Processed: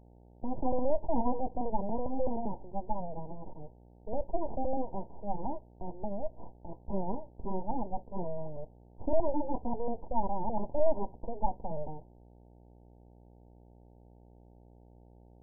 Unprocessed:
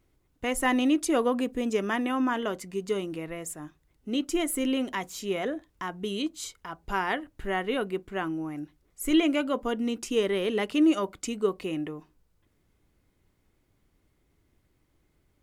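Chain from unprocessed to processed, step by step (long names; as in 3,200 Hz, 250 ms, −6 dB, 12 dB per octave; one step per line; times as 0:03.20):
full-wave rectification
hum with harmonics 60 Hz, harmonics 15, −57 dBFS −5 dB per octave
linear-phase brick-wall low-pass 1,000 Hz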